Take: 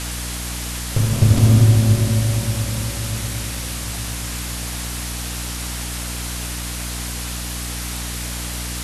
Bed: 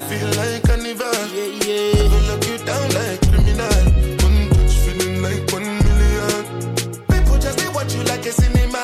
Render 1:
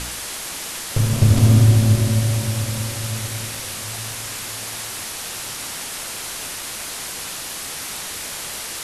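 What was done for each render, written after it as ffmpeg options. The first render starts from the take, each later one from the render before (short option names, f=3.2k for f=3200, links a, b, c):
-af "bandreject=f=60:t=h:w=4,bandreject=f=120:t=h:w=4,bandreject=f=180:t=h:w=4,bandreject=f=240:t=h:w=4,bandreject=f=300:t=h:w=4,bandreject=f=360:t=h:w=4,bandreject=f=420:t=h:w=4"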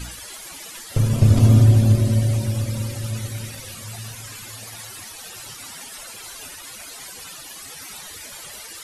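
-af "afftdn=nr=15:nf=-31"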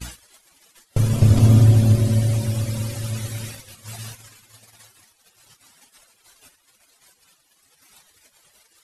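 -af "agate=range=-25dB:threshold=-34dB:ratio=16:detection=peak"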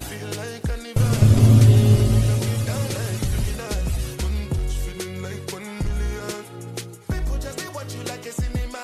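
-filter_complex "[1:a]volume=-11dB[a];[0:a][a]amix=inputs=2:normalize=0"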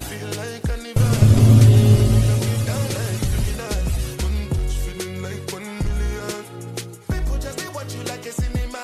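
-af "volume=2dB,alimiter=limit=-3dB:level=0:latency=1"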